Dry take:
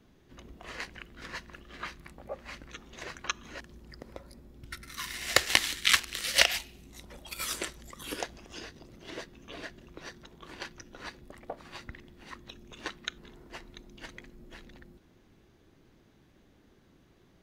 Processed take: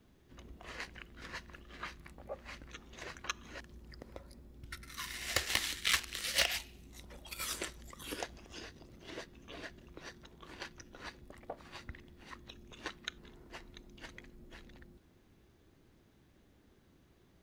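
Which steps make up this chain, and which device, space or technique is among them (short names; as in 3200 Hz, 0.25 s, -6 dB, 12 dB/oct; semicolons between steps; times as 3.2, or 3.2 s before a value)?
open-reel tape (soft clip -15.5 dBFS, distortion -9 dB; bell 72 Hz +4.5 dB 0.84 oct; white noise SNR 41 dB); gain -4.5 dB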